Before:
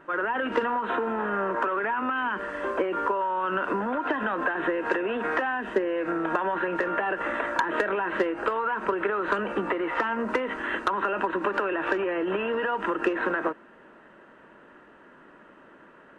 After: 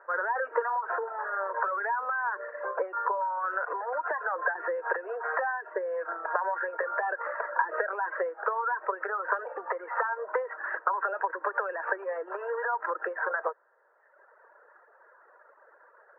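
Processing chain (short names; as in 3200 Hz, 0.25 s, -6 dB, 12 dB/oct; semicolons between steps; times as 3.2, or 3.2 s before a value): elliptic band-pass 480–1700 Hz, stop band 40 dB; reverb removal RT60 1.4 s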